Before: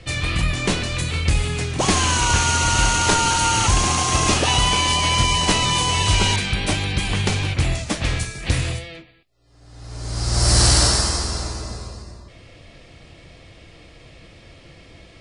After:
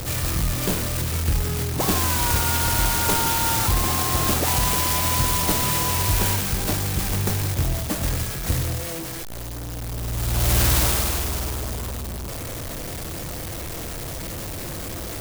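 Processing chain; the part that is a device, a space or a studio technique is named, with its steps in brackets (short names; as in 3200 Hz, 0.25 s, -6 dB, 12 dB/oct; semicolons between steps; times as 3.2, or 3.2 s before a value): early CD player with a faulty converter (zero-crossing step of -21 dBFS; clock jitter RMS 0.12 ms); gain -5 dB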